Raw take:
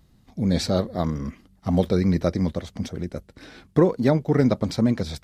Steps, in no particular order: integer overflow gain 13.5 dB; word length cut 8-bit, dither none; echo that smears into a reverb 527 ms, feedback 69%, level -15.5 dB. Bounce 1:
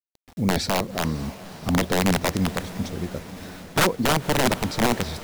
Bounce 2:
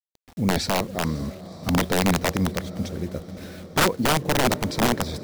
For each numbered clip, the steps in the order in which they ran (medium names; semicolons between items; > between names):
word length cut > integer overflow > echo that smears into a reverb; word length cut > echo that smears into a reverb > integer overflow